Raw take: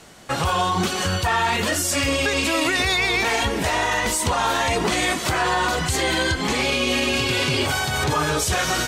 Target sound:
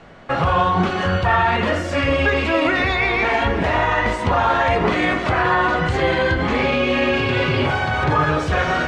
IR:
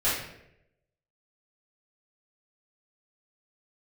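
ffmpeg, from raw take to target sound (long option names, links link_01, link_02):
-filter_complex "[0:a]lowpass=2300,asplit=2[link_01][link_02];[1:a]atrim=start_sample=2205,lowpass=2800[link_03];[link_02][link_03]afir=irnorm=-1:irlink=0,volume=-15dB[link_04];[link_01][link_04]amix=inputs=2:normalize=0,volume=2.5dB"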